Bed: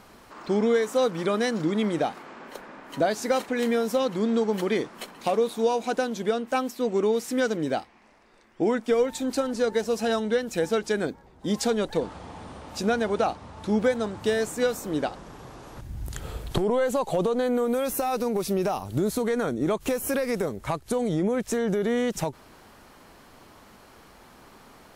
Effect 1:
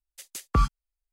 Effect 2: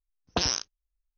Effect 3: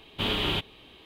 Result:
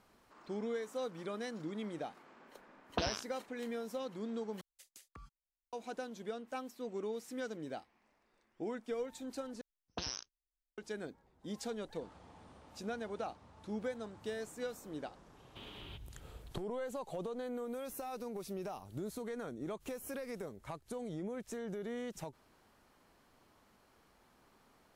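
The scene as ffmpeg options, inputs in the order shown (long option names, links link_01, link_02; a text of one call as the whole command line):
ffmpeg -i bed.wav -i cue0.wav -i cue1.wav -i cue2.wav -filter_complex "[2:a]asplit=2[link_01][link_02];[0:a]volume=-16.5dB[link_03];[link_01]lowpass=3700[link_04];[1:a]acompressor=threshold=-38dB:ratio=6:attack=3.2:release=140:knee=1:detection=peak[link_05];[3:a]acompressor=threshold=-29dB:ratio=6:attack=3.2:release=140:knee=1:detection=peak[link_06];[link_03]asplit=3[link_07][link_08][link_09];[link_07]atrim=end=4.614[link_10];[link_05]atrim=end=1.12,asetpts=PTS-STARTPTS,volume=-14dB[link_11];[link_08]atrim=start=5.726:end=9.614[link_12];[link_02]atrim=end=1.17,asetpts=PTS-STARTPTS,volume=-14.5dB[link_13];[link_09]atrim=start=10.776[link_14];[link_04]atrim=end=1.17,asetpts=PTS-STARTPTS,volume=-7dB,afade=type=in:duration=0.004:curve=hsin,afade=type=out:start_time=1.166:duration=0.004:curve=hsin,adelay=2610[link_15];[link_06]atrim=end=1.05,asetpts=PTS-STARTPTS,volume=-18dB,afade=type=in:duration=0.004:curve=hsin,afade=type=out:start_time=1.046:duration=0.004:curve=hsin,adelay=15370[link_16];[link_10][link_11]acrossfade=duration=0.004:curve1=hsin:curve2=hsin[link_17];[link_17][link_12]acrossfade=duration=0.004:curve1=hsin:curve2=hsin[link_18];[link_18][link_13]acrossfade=duration=0.004:curve1=hsin:curve2=hsin[link_19];[link_19][link_14]acrossfade=duration=0.004:curve1=hsin:curve2=hsin[link_20];[link_20][link_15][link_16]amix=inputs=3:normalize=0" out.wav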